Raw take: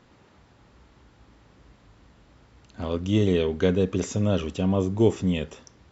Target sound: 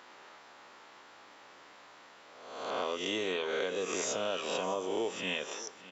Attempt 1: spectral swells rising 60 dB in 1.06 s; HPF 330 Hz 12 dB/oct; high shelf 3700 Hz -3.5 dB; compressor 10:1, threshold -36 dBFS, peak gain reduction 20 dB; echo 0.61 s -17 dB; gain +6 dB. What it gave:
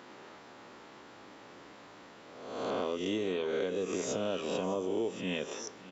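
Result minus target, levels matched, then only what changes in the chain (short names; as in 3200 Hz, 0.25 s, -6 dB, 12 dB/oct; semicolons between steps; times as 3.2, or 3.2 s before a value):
250 Hz band +5.5 dB
change: HPF 700 Hz 12 dB/oct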